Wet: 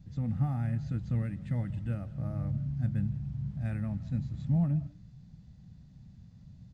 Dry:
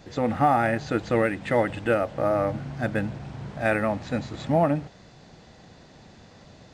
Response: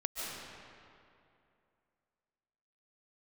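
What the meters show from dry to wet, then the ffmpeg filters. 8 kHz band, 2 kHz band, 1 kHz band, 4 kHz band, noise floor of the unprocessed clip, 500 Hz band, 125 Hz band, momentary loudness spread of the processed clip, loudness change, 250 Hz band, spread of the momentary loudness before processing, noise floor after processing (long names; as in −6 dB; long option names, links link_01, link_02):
can't be measured, −24.0 dB, −25.0 dB, below −20 dB, −51 dBFS, −25.5 dB, +2.0 dB, 6 LU, −8.0 dB, −7.0 dB, 9 LU, −55 dBFS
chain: -filter_complex "[0:a]firequalizer=gain_entry='entry(160,0);entry(360,-28);entry(5000,-21)':delay=0.05:min_phase=1,asplit=2[link_01][link_02];[1:a]atrim=start_sample=2205,afade=type=out:start_time=0.24:duration=0.01,atrim=end_sample=11025,adelay=16[link_03];[link_02][link_03]afir=irnorm=-1:irlink=0,volume=-15.5dB[link_04];[link_01][link_04]amix=inputs=2:normalize=0,volume=2dB"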